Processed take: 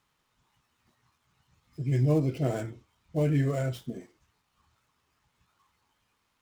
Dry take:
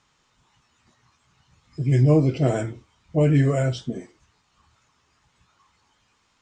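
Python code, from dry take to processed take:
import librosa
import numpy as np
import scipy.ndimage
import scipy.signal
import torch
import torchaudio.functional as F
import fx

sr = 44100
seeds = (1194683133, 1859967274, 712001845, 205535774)

y = fx.dead_time(x, sr, dead_ms=0.064)
y = y * 10.0 ** (-7.5 / 20.0)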